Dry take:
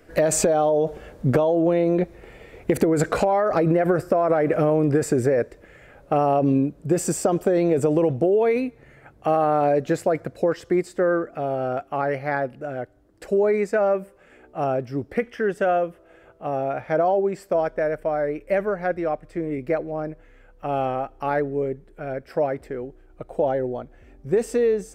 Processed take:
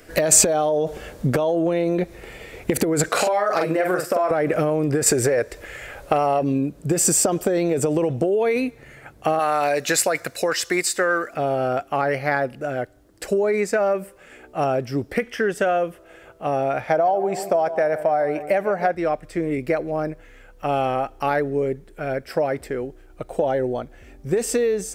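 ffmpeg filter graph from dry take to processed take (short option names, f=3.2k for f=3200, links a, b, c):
-filter_complex "[0:a]asettb=1/sr,asplit=3[a][b][c];[a]atrim=end=3.094[d];[b]atrim=start=3.09:end=4.31,asetpts=PTS-STARTPTS,afade=t=in:d=0.004:c=qsin,afade=t=out:st=1.216:d=0.004:c=qsin,highpass=f=630:p=1,asplit=2[e][f];[f]adelay=44,volume=-3.5dB[g];[e][g]amix=inputs=2:normalize=0,atrim=end_sample=53802[h];[c]atrim=start=4.306[i];[d][h]acrossfade=d=0.004:c1=hsin:c2=qsin[j];[j][i]acrossfade=d=0.004:c1=qsin:c2=hsin,asettb=1/sr,asplit=3[k][l][m];[k]atrim=end=5.064[n];[l]atrim=start=5.06:end=6.43,asetpts=PTS-STARTPTS,afade=t=in:d=0.004:c=qsin,afade=t=out:st=1.366:d=0.004:c=qsin,equalizer=f=200:t=o:w=1.4:g=-9,acontrast=65[o];[m]atrim=start=6.426[p];[n][o]acrossfade=d=0.004:c1=hsin:c2=qsin[q];[q][p]acrossfade=d=0.004:c1=qsin:c2=hsin,asettb=1/sr,asplit=3[r][s][t];[r]atrim=end=9.394[u];[s]atrim=start=9.39:end=11.34,asetpts=PTS-STARTPTS,afade=t=in:d=0.004:c=qsin,afade=t=out:st=1.946:d=0.004:c=qsin,tiltshelf=f=750:g=-9,bandreject=f=3.2k:w=13[v];[t]atrim=start=11.336[w];[u][v]acrossfade=d=0.004:c1=hsin:c2=qsin[x];[x][w]acrossfade=d=0.004:c1=qsin:c2=hsin,asettb=1/sr,asplit=3[y][z][aa];[y]atrim=end=16.874[ab];[z]atrim=start=16.87:end=18.95,asetpts=PTS-STARTPTS,afade=t=in:d=0.004:c=qsin,afade=t=out:st=2.076:d=0.004:c=qsin,highpass=90,equalizer=f=760:w=2.6:g=9.5,asplit=2[ac][ad];[ad]adelay=148,lowpass=f=2.1k:p=1,volume=-15dB,asplit=2[ae][af];[af]adelay=148,lowpass=f=2.1k:p=1,volume=0.46,asplit=2[ag][ah];[ah]adelay=148,lowpass=f=2.1k:p=1,volume=0.46,asplit=2[ai][aj];[aj]adelay=148,lowpass=f=2.1k:p=1,volume=0.46[ak];[ac][ae][ag][ai][ak]amix=inputs=5:normalize=0,atrim=end_sample=91728[al];[aa]atrim=start=18.946[am];[ab][al]acrossfade=d=0.004:c1=hsin:c2=qsin[an];[an][am]acrossfade=d=0.004:c1=qsin:c2=hsin,acompressor=threshold=-21dB:ratio=6,highshelf=f=2.4k:g=10.5,volume=3.5dB"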